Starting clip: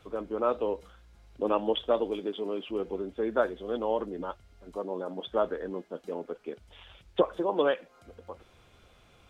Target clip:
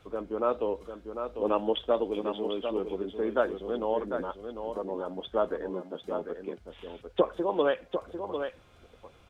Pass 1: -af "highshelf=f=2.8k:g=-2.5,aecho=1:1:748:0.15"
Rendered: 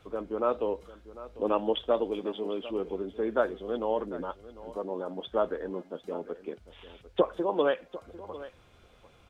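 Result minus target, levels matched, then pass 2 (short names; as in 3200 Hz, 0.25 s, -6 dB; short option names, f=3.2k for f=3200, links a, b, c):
echo-to-direct -9 dB
-af "highshelf=f=2.8k:g=-2.5,aecho=1:1:748:0.422"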